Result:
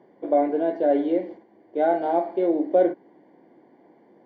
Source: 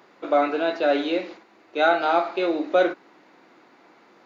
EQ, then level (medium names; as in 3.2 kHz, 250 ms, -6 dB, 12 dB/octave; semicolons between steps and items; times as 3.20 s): boxcar filter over 34 samples; +3.5 dB